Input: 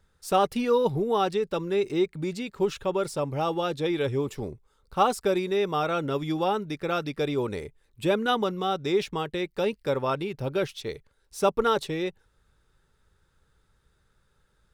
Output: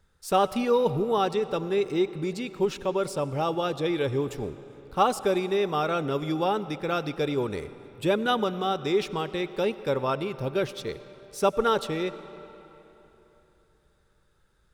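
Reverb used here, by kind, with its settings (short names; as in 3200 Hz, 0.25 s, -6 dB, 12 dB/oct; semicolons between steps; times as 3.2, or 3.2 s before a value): digital reverb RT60 3.5 s, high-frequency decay 0.75×, pre-delay 50 ms, DRR 14.5 dB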